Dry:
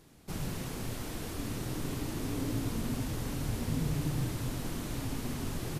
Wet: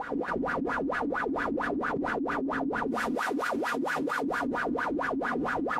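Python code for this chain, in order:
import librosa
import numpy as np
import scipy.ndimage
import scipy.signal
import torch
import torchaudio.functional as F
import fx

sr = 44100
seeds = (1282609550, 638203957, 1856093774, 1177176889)

y = fx.lower_of_two(x, sr, delay_ms=4.1)
y = fx.tilt_eq(y, sr, slope=fx.steps((0.0, -2.5), (2.87, 2.5), (4.22, -1.5)))
y = fx.rev_gated(y, sr, seeds[0], gate_ms=330, shape='flat', drr_db=1.5)
y = fx.wah_lfo(y, sr, hz=4.4, low_hz=270.0, high_hz=1600.0, q=10.0)
y = fx.env_flatten(y, sr, amount_pct=100)
y = y * librosa.db_to_amplitude(3.0)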